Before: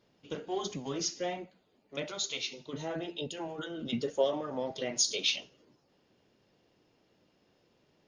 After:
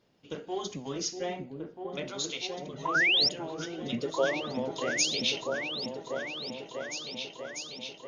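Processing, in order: 2.85–3.29 s: painted sound rise 910–5700 Hz -24 dBFS; 2.47–2.95 s: touch-sensitive flanger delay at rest 2.5 ms, full sweep at -23 dBFS; delay with an opening low-pass 643 ms, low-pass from 400 Hz, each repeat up 2 oct, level -3 dB

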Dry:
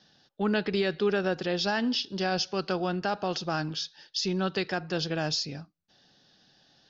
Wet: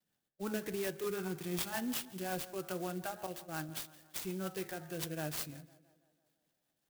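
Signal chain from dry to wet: spectral noise reduction 12 dB; 1.04–1.73 s: comb 0.9 ms, depth 88%; 3.26–3.69 s: expander -27 dBFS; de-hum 69.18 Hz, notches 34; rotary cabinet horn 5.5 Hz; vibrato 0.35 Hz 14 cents; on a send: tape echo 167 ms, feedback 61%, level -16.5 dB, low-pass 3.1 kHz; on the sum: sampling jitter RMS 0.061 ms; trim -7 dB

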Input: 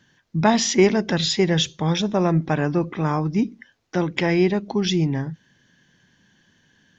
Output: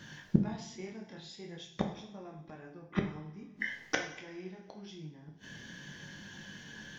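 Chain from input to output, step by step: chorus 0.48 Hz, delay 19.5 ms, depth 7 ms; inverted gate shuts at -24 dBFS, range -38 dB; two-slope reverb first 0.62 s, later 2.1 s, from -19 dB, DRR 2 dB; trim +12 dB

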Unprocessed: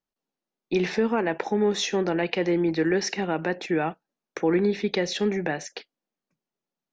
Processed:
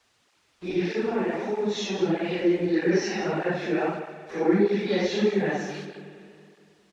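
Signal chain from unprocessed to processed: phase randomisation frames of 200 ms; 0.73–2.74 s: peaking EQ 1.2 kHz -5.5 dB 2.6 oct; small samples zeroed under -42.5 dBFS; added noise white -61 dBFS; distance through air 100 m; delay 158 ms -10.5 dB; spring tank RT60 2.5 s, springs 46 ms, chirp 75 ms, DRR 9 dB; cancelling through-zero flanger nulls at 1.6 Hz, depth 7.9 ms; trim +3.5 dB

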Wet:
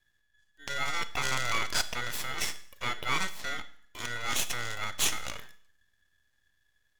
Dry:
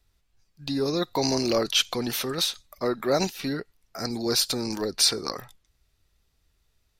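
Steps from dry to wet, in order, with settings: ring modulator 1.7 kHz; half-wave rectifier; Schroeder reverb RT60 0.59 s, combs from 26 ms, DRR 13.5 dB

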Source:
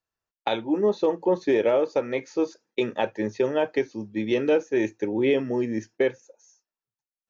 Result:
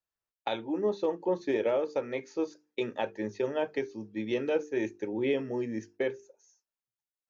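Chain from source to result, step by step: hum notches 50/100/150/200/250/300/350/400/450 Hz; trim -6.5 dB

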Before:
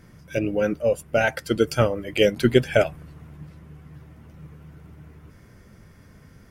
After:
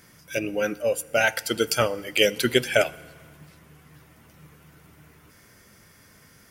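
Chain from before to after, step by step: tilt EQ +3 dB/octave; FDN reverb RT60 1.6 s, low-frequency decay 1×, high-frequency decay 0.95×, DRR 19 dB

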